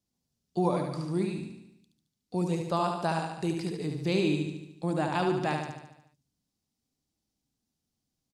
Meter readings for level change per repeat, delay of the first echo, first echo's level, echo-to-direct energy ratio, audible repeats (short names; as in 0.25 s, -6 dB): -5.0 dB, 73 ms, -5.0 dB, -3.5 dB, 7